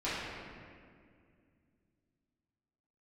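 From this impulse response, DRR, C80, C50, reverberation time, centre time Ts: -13.0 dB, 0.0 dB, -3.0 dB, 2.2 s, 134 ms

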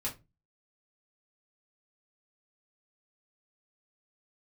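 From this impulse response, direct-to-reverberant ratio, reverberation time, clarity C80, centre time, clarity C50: -5.5 dB, 0.25 s, 22.0 dB, 17 ms, 14.0 dB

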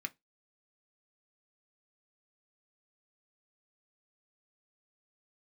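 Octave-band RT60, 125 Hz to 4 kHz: 0.25 s, 0.20 s, 0.20 s, 0.15 s, 0.15 s, 0.15 s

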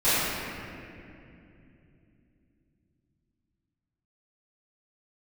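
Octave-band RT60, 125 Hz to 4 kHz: 4.9 s, 4.4 s, 3.2 s, 2.3 s, 2.5 s, 1.7 s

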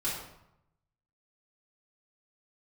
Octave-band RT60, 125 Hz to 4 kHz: 1.2 s, 0.90 s, 0.80 s, 0.85 s, 0.65 s, 0.55 s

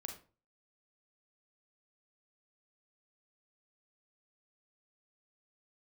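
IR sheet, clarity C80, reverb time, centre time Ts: 13.0 dB, 0.35 s, 21 ms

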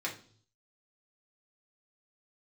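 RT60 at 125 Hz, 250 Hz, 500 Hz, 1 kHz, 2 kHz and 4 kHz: 0.90 s, 0.60 s, 0.55 s, 0.45 s, 0.40 s, 0.60 s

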